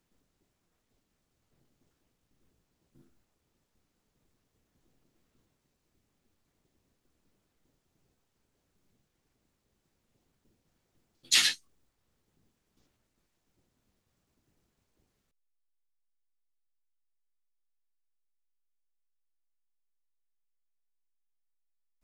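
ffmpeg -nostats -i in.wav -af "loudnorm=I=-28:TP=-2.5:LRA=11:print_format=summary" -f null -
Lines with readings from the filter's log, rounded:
Input Integrated:    -24.8 LUFS
Input True Peak:      -8.1 dBTP
Input LRA:             0.0 LU
Input Threshold:     -38.6 LUFS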